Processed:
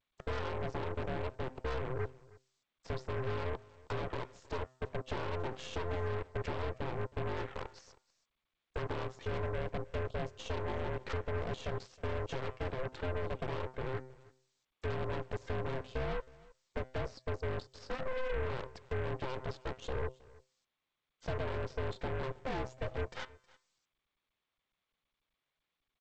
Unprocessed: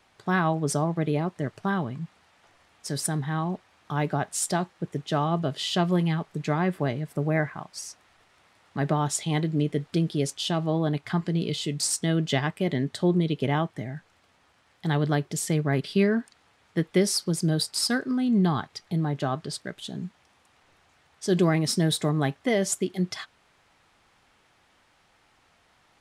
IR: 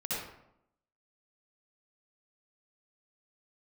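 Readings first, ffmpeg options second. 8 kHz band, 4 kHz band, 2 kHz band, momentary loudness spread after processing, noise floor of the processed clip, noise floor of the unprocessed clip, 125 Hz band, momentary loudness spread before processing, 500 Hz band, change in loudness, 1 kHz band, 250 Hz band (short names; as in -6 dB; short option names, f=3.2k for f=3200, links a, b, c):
-29.0 dB, -17.0 dB, -10.0 dB, 6 LU, under -85 dBFS, -64 dBFS, -13.0 dB, 11 LU, -8.5 dB, -13.0 dB, -10.5 dB, -20.5 dB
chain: -af "anlmdn=0.00631,highpass=100,acompressor=threshold=-34dB:ratio=16,afftfilt=real='re*gte(hypot(re,im),0.00316)':imag='im*gte(hypot(re,im),0.00316)':win_size=1024:overlap=0.75,bandreject=f=128.6:t=h:w=4,bandreject=f=257.2:t=h:w=4,bandreject=f=385.8:t=h:w=4,bandreject=f=514.4:t=h:w=4,bandreject=f=643:t=h:w=4,bandreject=f=771.6:t=h:w=4,bandreject=f=900.2:t=h:w=4,bandreject=f=1.0288k:t=h:w=4,bandreject=f=1.1574k:t=h:w=4,bandreject=f=1.286k:t=h:w=4,bandreject=f=1.4146k:t=h:w=4,bandreject=f=1.5432k:t=h:w=4,bandreject=f=1.6718k:t=h:w=4,bandreject=f=1.8004k:t=h:w=4,bandreject=f=1.929k:t=h:w=4,bandreject=f=2.0576k:t=h:w=4,bandreject=f=2.1862k:t=h:w=4,bandreject=f=2.3148k:t=h:w=4,bandreject=f=2.4434k:t=h:w=4,bandreject=f=2.572k:t=h:w=4,bandreject=f=2.7006k:t=h:w=4,bandreject=f=2.8292k:t=h:w=4,bandreject=f=2.9578k:t=h:w=4,bandreject=f=3.0864k:t=h:w=4,bandreject=f=3.215k:t=h:w=4,bandreject=f=3.3436k:t=h:w=4,bandreject=f=3.4722k:t=h:w=4,asoftclip=type=tanh:threshold=-36.5dB,aeval=exprs='val(0)*sin(2*PI*260*n/s)':c=same,adynamicsmooth=sensitivity=1.5:basefreq=1.7k,aeval=exprs='0.015*(cos(1*acos(clip(val(0)/0.015,-1,1)))-cos(1*PI/2))+0.00335*(cos(8*acos(clip(val(0)/0.015,-1,1)))-cos(8*PI/2))':c=same,aecho=1:1:317:0.075,volume=8dB" -ar 16000 -c:a g722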